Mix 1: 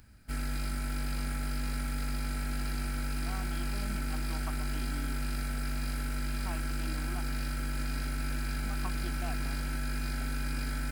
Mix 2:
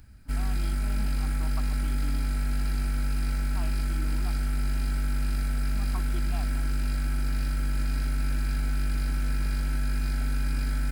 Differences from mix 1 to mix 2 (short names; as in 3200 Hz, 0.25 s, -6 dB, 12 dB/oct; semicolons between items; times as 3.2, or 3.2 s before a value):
speech: entry -2.90 s; master: add low shelf 120 Hz +9 dB